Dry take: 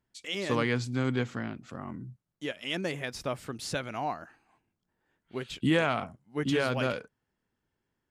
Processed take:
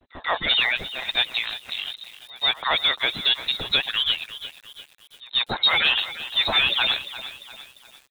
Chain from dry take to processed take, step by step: median-filter separation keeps percussive; sample leveller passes 3; reverse echo 0.139 s -21.5 dB; inverted band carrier 4000 Hz; lo-fi delay 0.347 s, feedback 55%, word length 7-bit, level -13.5 dB; gain +4 dB

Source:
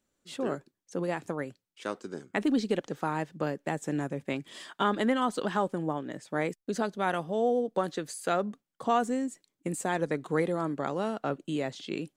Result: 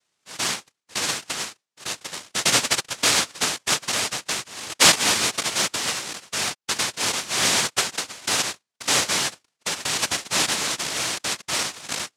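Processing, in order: 2.9–4.92 band shelf 1300 Hz +9.5 dB; noise vocoder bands 1; gain +5 dB

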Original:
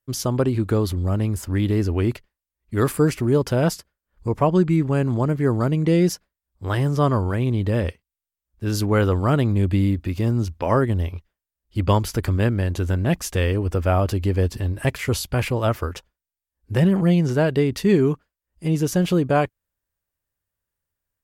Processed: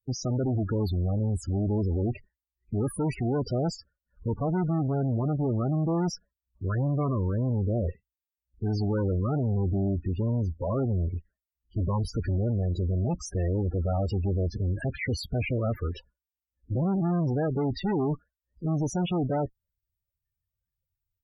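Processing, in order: tube stage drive 27 dB, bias 0.4; loudest bins only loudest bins 16; gain +3 dB

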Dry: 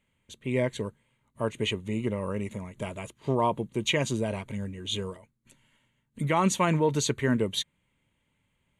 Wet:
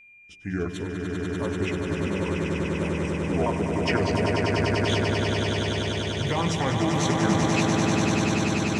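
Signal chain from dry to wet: repeated pitch sweeps -7 st, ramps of 0.692 s; de-hum 55.56 Hz, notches 21; on a send: swelling echo 98 ms, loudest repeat 8, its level -5 dB; on the sum: whine 2400 Hz -49 dBFS

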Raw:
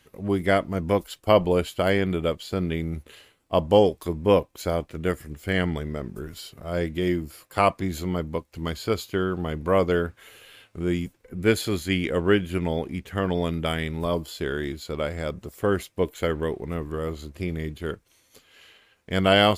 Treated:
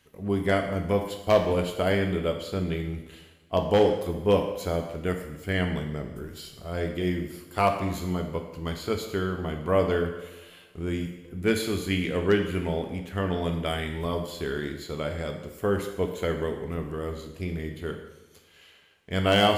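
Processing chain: wavefolder -8.5 dBFS; two-slope reverb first 0.93 s, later 2.9 s, from -23 dB, DRR 3.5 dB; gain -4 dB

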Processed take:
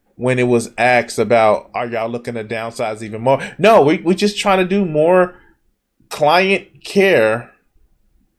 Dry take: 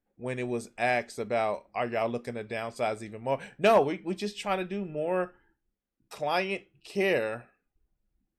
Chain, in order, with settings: 1.66–3.19 compressor 2.5:1, threshold -40 dBFS, peak gain reduction 10.5 dB; maximiser +19 dB; gain -1 dB

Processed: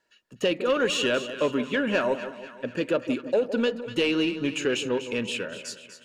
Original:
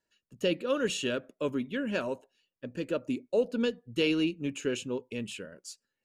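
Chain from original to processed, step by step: compressor, threshold -28 dBFS, peak gain reduction 7.5 dB; overdrive pedal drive 12 dB, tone 2700 Hz, clips at -19.5 dBFS; on a send: split-band echo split 1100 Hz, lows 0.163 s, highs 0.245 s, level -11.5 dB; on the sum: gain +7 dB

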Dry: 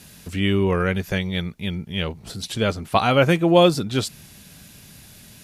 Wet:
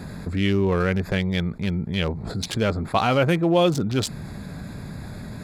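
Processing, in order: Wiener smoothing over 15 samples; fast leveller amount 50%; gain -5 dB

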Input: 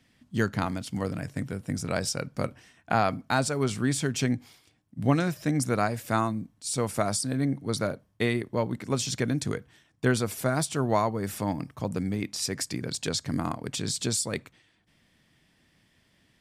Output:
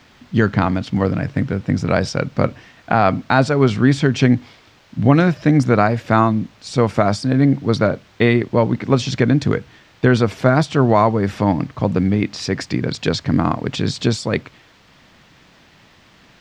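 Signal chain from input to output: in parallel at -4.5 dB: requantised 8-bit, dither triangular; on the sum: air absorption 200 m; maximiser +10 dB; gain -1 dB

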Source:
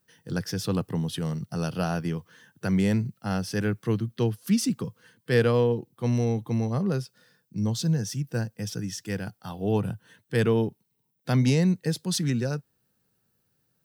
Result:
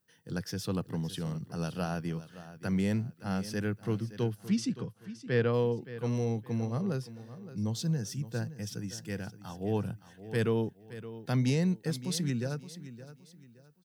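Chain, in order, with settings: 4.46–5.52 LPF 6700 Hz -> 3100 Hz 12 dB/oct; feedback echo 0.569 s, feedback 31%, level -14.5 dB; gain -6 dB

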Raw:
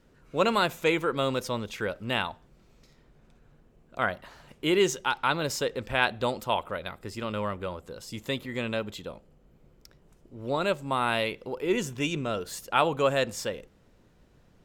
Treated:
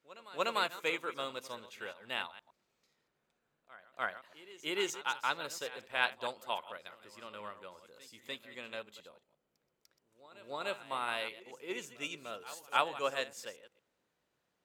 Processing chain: reverse delay 0.114 s, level -10.5 dB; HPF 850 Hz 6 dB/oct; notch 5400 Hz, Q 24; on a send: reverse echo 0.296 s -13.5 dB; on the sum: upward expander 1.5:1, over -39 dBFS; gain -3.5 dB

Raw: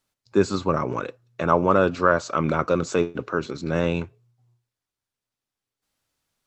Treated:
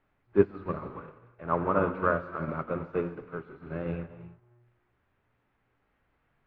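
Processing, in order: zero-crossing step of -27 dBFS; LPF 2200 Hz 24 dB/oct; low shelf 100 Hz +5 dB; reverb, pre-delay 3 ms, DRR 3 dB; upward expander 2.5:1, over -33 dBFS; gain -4 dB

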